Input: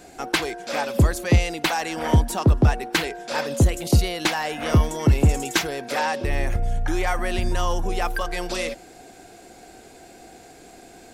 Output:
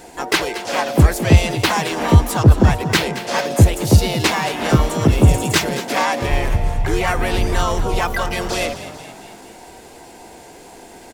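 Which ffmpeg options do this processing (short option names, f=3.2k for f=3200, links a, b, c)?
-filter_complex "[0:a]asplit=7[a][b][c][d][e][f][g];[b]adelay=222,afreqshift=45,volume=-13dB[h];[c]adelay=444,afreqshift=90,volume=-18.2dB[i];[d]adelay=666,afreqshift=135,volume=-23.4dB[j];[e]adelay=888,afreqshift=180,volume=-28.6dB[k];[f]adelay=1110,afreqshift=225,volume=-33.8dB[l];[g]adelay=1332,afreqshift=270,volume=-39dB[m];[a][h][i][j][k][l][m]amix=inputs=7:normalize=0,asplit=2[n][o];[o]asetrate=55563,aresample=44100,atempo=0.793701,volume=-3dB[p];[n][p]amix=inputs=2:normalize=0,volume=3.5dB"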